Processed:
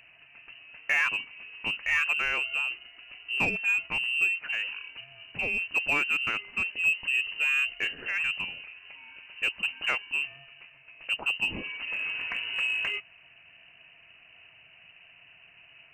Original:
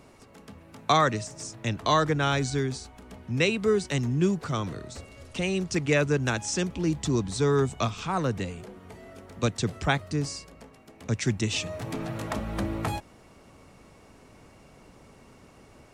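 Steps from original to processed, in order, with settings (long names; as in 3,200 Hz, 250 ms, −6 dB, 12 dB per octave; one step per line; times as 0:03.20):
parametric band 330 Hz +9 dB 0.2 octaves
voice inversion scrambler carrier 2,900 Hz
in parallel at −6.5 dB: hard clipping −22.5 dBFS, distortion −9 dB
on the sum: level −6.5 dB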